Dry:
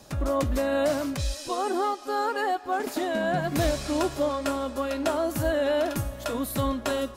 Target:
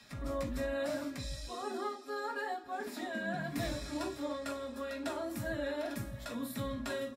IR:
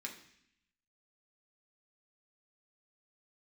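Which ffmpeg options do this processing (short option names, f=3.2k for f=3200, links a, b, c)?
-filter_complex "[0:a]acrossover=split=210|1400|4100[a][b][c][d];[a]aecho=1:1:139:0.631[e];[c]acompressor=mode=upward:threshold=-43dB:ratio=2.5[f];[e][b][f][d]amix=inputs=4:normalize=0[g];[1:a]atrim=start_sample=2205,atrim=end_sample=3528[h];[g][h]afir=irnorm=-1:irlink=0,volume=-8dB" -ar 48000 -c:a libvorbis -b:a 48k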